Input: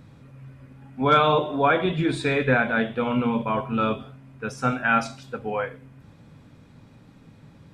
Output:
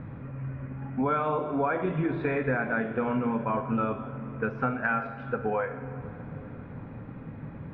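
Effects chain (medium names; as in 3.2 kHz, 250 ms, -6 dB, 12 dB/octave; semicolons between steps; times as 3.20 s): low-pass 2.1 kHz 24 dB/octave; compression 5:1, threshold -35 dBFS, peak gain reduction 19 dB; on a send: reverberation RT60 4.5 s, pre-delay 57 ms, DRR 12 dB; on the sum: trim +8.5 dB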